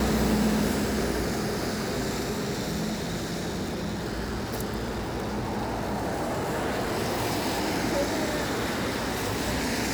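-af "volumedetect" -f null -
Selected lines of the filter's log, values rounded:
mean_volume: -28.2 dB
max_volume: -12.7 dB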